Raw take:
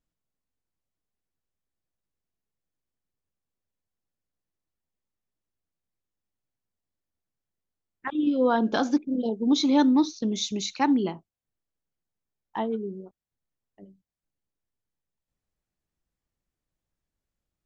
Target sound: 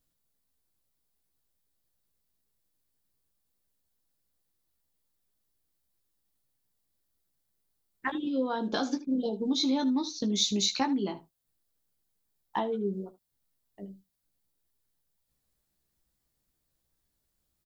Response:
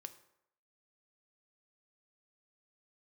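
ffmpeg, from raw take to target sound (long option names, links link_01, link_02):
-filter_complex "[0:a]acompressor=threshold=-31dB:ratio=6,aexciter=amount=1.5:drive=7.4:freq=3600,asplit=2[link_01][link_02];[link_02]aecho=0:1:15|77:0.531|0.141[link_03];[link_01][link_03]amix=inputs=2:normalize=0,volume=3dB"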